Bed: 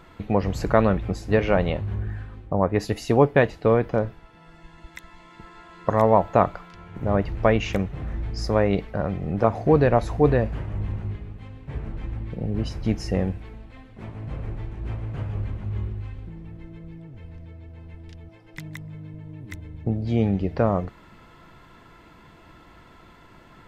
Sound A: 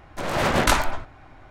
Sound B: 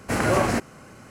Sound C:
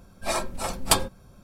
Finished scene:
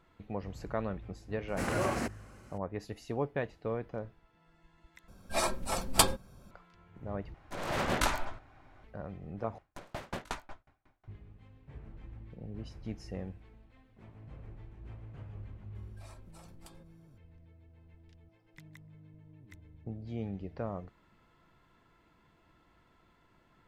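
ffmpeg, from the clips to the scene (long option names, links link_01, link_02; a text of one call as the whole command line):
ffmpeg -i bed.wav -i cue0.wav -i cue1.wav -i cue2.wav -filter_complex "[3:a]asplit=2[link_01][link_02];[1:a]asplit=2[link_03][link_04];[0:a]volume=-16.5dB[link_05];[link_04]aeval=exprs='val(0)*pow(10,-33*if(lt(mod(5.5*n/s,1),2*abs(5.5)/1000),1-mod(5.5*n/s,1)/(2*abs(5.5)/1000),(mod(5.5*n/s,1)-2*abs(5.5)/1000)/(1-2*abs(5.5)/1000))/20)':channel_layout=same[link_06];[link_02]acompressor=threshold=-37dB:ratio=6:attack=3.2:release=140:knee=1:detection=peak[link_07];[link_05]asplit=4[link_08][link_09][link_10][link_11];[link_08]atrim=end=5.084[link_12];[link_01]atrim=end=1.43,asetpts=PTS-STARTPTS,volume=-3.5dB[link_13];[link_09]atrim=start=6.506:end=7.344[link_14];[link_03]atrim=end=1.5,asetpts=PTS-STARTPTS,volume=-10.5dB[link_15];[link_10]atrim=start=8.836:end=9.584[link_16];[link_06]atrim=end=1.5,asetpts=PTS-STARTPTS,volume=-12.5dB[link_17];[link_11]atrim=start=11.076[link_18];[2:a]atrim=end=1.1,asetpts=PTS-STARTPTS,volume=-10.5dB,afade=type=in:duration=0.004:curve=hsin,afade=type=out:start_time=1.096:duration=0.004:curve=hsin,adelay=1480[link_19];[link_07]atrim=end=1.43,asetpts=PTS-STARTPTS,volume=-15.5dB,afade=type=in:duration=0.004:curve=hsin,afade=type=out:start_time=1.426:duration=0.004:curve=hsin,adelay=15750[link_20];[link_12][link_13]acrossfade=duration=0.004:curve1=hsin:curve2=hsin[link_21];[link_21][link_14]acrossfade=duration=0.004:curve1=hsin:curve2=hsin[link_22];[link_22][link_15]acrossfade=duration=0.004:curve1=hsin:curve2=hsin[link_23];[link_23][link_16]acrossfade=duration=0.004:curve1=hsin:curve2=hsin[link_24];[link_24][link_17]acrossfade=duration=0.004:curve1=hsin:curve2=hsin[link_25];[link_25][link_18]acrossfade=duration=0.004:curve1=hsin:curve2=hsin[link_26];[link_26][link_19][link_20]amix=inputs=3:normalize=0" out.wav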